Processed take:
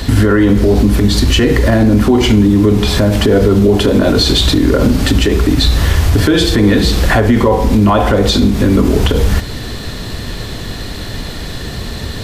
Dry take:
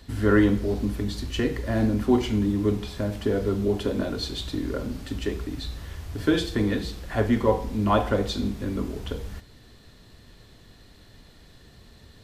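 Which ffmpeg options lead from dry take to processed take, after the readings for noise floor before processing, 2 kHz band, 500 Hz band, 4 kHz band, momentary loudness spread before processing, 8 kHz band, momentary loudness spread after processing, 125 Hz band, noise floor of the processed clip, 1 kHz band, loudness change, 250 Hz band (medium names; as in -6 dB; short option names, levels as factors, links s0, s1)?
-52 dBFS, +15.0 dB, +13.5 dB, +19.5 dB, 12 LU, +20.0 dB, 14 LU, +17.0 dB, -24 dBFS, +13.0 dB, +15.0 dB, +14.5 dB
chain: -af "acompressor=threshold=0.0178:ratio=2.5,alimiter=level_in=28.2:limit=0.891:release=50:level=0:latency=1,volume=0.891"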